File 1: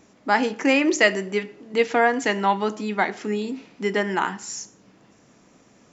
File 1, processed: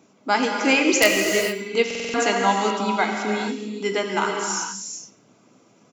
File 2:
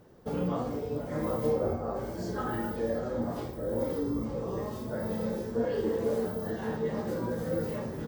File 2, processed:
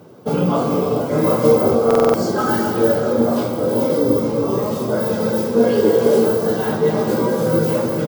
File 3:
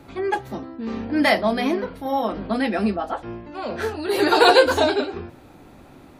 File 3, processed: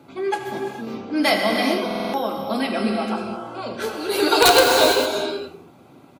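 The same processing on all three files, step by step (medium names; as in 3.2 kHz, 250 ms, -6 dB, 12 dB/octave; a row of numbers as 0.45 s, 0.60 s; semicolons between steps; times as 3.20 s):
pre-emphasis filter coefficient 0.8; reverb removal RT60 0.55 s; high-pass 110 Hz 24 dB/octave; treble shelf 6 kHz -10.5 dB; band-stop 1.8 kHz, Q 5.3; integer overflow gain 16.5 dB; feedback delay 85 ms, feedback 29%, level -18 dB; gated-style reverb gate 480 ms flat, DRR 1 dB; buffer glitch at 1.86 s, samples 2048, times 5; tape noise reduction on one side only decoder only; peak normalisation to -1.5 dBFS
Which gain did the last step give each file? +13.0 dB, +28.0 dB, +12.0 dB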